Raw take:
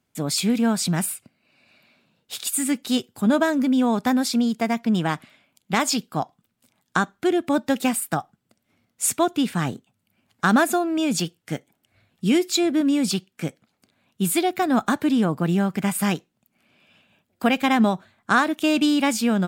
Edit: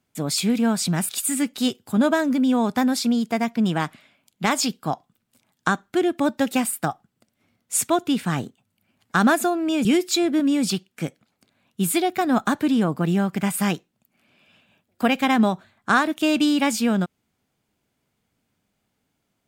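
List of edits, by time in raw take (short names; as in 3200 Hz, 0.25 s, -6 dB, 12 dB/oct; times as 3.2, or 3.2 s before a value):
1.09–2.38 cut
11.14–12.26 cut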